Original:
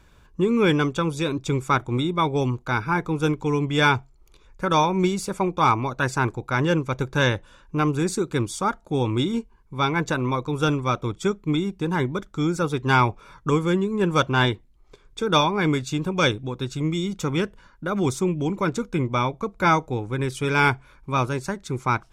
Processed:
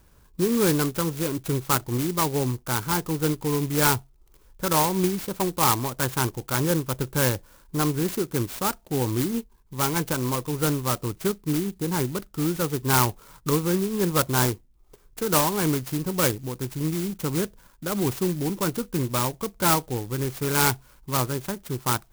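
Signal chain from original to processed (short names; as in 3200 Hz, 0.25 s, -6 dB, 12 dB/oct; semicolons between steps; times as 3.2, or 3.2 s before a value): clock jitter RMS 0.11 ms; gain -2 dB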